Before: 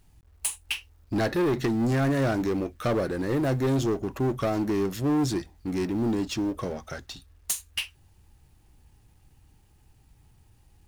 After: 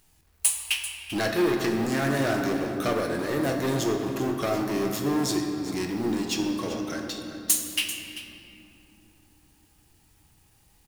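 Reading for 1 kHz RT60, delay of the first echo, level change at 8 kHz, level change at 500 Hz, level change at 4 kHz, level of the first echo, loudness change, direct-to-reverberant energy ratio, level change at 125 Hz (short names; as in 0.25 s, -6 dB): 2.5 s, 0.39 s, +7.0 dB, +0.5 dB, +5.5 dB, -13.0 dB, +1.0 dB, 2.0 dB, -4.5 dB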